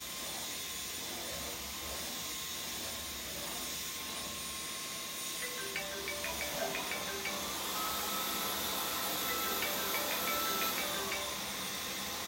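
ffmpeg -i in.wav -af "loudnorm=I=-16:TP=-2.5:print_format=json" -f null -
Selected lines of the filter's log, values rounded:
"input_i" : "-35.2",
"input_tp" : "-19.3",
"input_lra" : "4.5",
"input_thresh" : "-45.2",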